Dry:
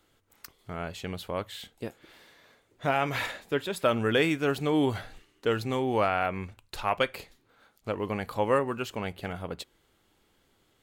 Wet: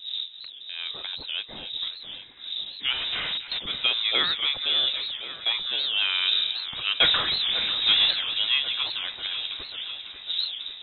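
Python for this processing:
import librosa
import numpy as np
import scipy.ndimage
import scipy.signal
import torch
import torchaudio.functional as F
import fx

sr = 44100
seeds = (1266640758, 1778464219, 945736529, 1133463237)

y = fx.dmg_wind(x, sr, seeds[0], corner_hz=230.0, level_db=-38.0)
y = fx.schmitt(y, sr, flips_db=-35.0, at=(2.93, 3.61))
y = fx.power_curve(y, sr, exponent=0.35, at=(7.0, 8.11))
y = fx.echo_alternate(y, sr, ms=272, hz=1600.0, feedback_pct=83, wet_db=-10)
y = fx.freq_invert(y, sr, carrier_hz=3800)
y = fx.record_warp(y, sr, rpm=78.0, depth_cents=160.0)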